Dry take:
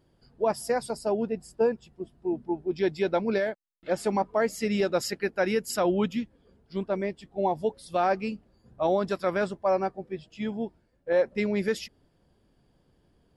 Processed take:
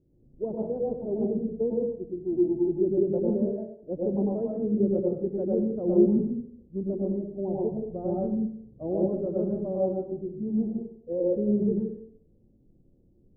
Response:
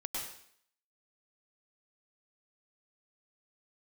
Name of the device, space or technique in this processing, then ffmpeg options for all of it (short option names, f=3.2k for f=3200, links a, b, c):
next room: -filter_complex "[0:a]asettb=1/sr,asplit=3[a][b][c];[a]atrim=end=7.534[d];[b]atrim=start=7.53:end=8.26,asetpts=PTS-STARTPTS,afade=t=in:d=0.004:c=qsin,afade=t=out:st=0.726:d=0.004:c=qsin,asubboost=boost=6:cutoff=240[e];[c]atrim=start=8.256[f];[d][e]acrossfade=d=0.004:c1=hsin:c2=qsin[g];[g][f]acrossfade=d=0.004:c1=qsin:c2=hsin,lowpass=f=440:w=0.5412,lowpass=f=440:w=1.3066[h];[1:a]atrim=start_sample=2205[i];[h][i]afir=irnorm=-1:irlink=0,volume=3dB"